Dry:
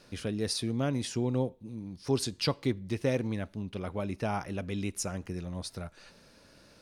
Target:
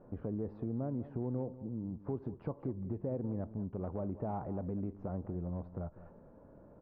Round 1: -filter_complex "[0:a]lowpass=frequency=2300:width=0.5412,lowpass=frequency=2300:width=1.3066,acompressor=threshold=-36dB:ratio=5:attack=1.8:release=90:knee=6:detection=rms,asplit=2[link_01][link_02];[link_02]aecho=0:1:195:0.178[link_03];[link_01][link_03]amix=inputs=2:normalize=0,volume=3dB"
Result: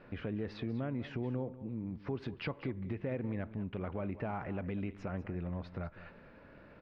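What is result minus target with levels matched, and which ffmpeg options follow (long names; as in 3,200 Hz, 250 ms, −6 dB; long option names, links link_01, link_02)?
2,000 Hz band +18.0 dB
-filter_complex "[0:a]lowpass=frequency=950:width=0.5412,lowpass=frequency=950:width=1.3066,acompressor=threshold=-36dB:ratio=5:attack=1.8:release=90:knee=6:detection=rms,asplit=2[link_01][link_02];[link_02]aecho=0:1:195:0.178[link_03];[link_01][link_03]amix=inputs=2:normalize=0,volume=3dB"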